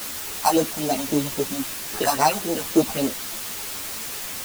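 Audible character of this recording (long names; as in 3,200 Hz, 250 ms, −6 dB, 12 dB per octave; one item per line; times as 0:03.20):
aliases and images of a low sample rate 3,400 Hz, jitter 0%
phaser sweep stages 4, 3.7 Hz, lowest notch 330–3,500 Hz
a quantiser's noise floor 6 bits, dither triangular
a shimmering, thickened sound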